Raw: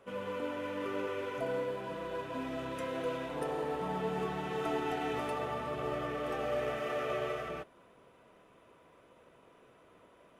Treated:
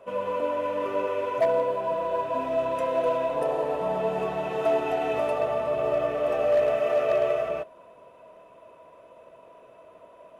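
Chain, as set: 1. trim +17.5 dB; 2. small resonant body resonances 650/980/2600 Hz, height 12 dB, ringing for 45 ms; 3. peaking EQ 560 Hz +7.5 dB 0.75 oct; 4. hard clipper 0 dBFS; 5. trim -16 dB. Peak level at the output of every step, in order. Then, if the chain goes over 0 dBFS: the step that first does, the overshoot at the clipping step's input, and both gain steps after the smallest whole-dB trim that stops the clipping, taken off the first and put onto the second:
-3.5 dBFS, +1.0 dBFS, +5.5 dBFS, 0.0 dBFS, -16.0 dBFS; step 2, 5.5 dB; step 1 +11.5 dB, step 5 -10 dB

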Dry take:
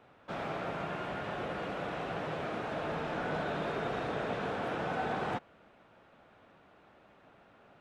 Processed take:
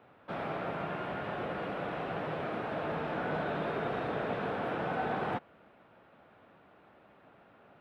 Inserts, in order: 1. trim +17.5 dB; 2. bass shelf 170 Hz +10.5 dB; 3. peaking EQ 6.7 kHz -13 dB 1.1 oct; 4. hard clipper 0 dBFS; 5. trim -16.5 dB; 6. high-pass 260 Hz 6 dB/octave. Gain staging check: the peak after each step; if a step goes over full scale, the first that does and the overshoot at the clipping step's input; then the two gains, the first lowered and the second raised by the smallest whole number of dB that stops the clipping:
-5.0 dBFS, -2.5 dBFS, -3.0 dBFS, -3.0 dBFS, -19.5 dBFS, -21.5 dBFS; nothing clips

